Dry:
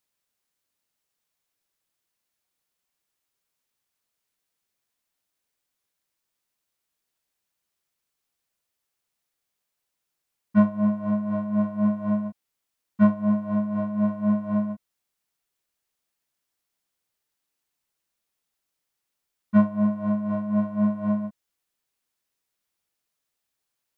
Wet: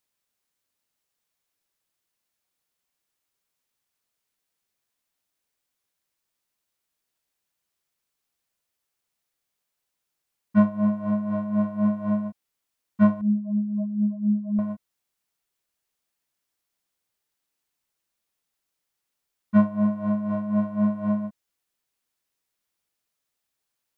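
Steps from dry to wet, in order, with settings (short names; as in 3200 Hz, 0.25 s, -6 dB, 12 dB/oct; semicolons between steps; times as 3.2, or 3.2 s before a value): 13.21–14.59 spectral contrast raised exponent 3.1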